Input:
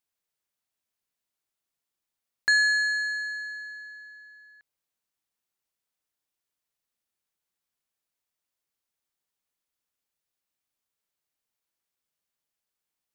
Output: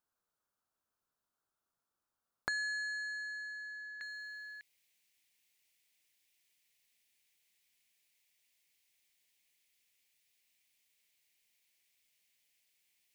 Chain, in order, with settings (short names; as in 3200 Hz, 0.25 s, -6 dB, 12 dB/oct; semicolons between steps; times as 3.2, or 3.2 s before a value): resonant high shelf 1700 Hz -6.5 dB, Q 3, from 4.01 s +8 dB; compressor 2:1, threshold -39 dBFS, peak gain reduction 9.5 dB; dynamic EQ 1200 Hz, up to -6 dB, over -48 dBFS, Q 0.71; gain +1.5 dB